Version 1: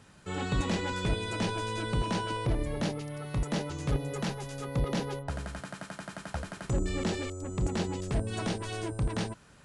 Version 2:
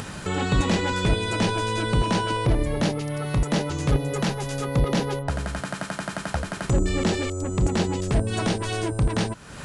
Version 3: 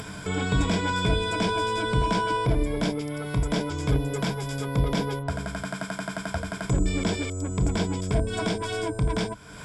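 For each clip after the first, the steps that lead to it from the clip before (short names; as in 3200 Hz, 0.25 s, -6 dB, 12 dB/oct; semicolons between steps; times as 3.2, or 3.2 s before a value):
upward compressor, threshold -31 dBFS; gain +8 dB
ripple EQ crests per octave 1.7, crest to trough 11 dB; gain -4 dB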